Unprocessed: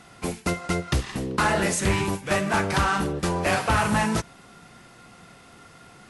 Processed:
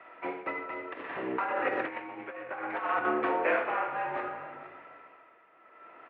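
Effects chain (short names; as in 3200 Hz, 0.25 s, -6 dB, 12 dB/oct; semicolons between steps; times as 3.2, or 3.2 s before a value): shoebox room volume 700 m³, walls mixed, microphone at 1.3 m; 0.55–3.05 negative-ratio compressor -23 dBFS, ratio -0.5; mistuned SSB -72 Hz 460–2500 Hz; echo 0.463 s -23 dB; tremolo 0.64 Hz, depth 72%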